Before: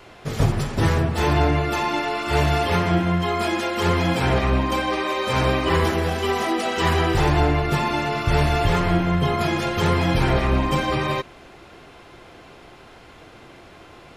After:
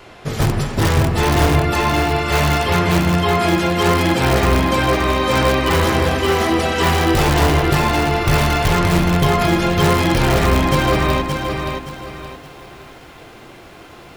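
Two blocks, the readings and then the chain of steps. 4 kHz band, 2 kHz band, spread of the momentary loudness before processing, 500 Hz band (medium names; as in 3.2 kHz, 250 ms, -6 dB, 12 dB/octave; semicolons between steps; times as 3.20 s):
+6.0 dB, +5.5 dB, 3 LU, +5.0 dB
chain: in parallel at -4 dB: integer overflow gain 12 dB; on the sum: bit-crushed delay 572 ms, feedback 35%, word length 8-bit, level -5 dB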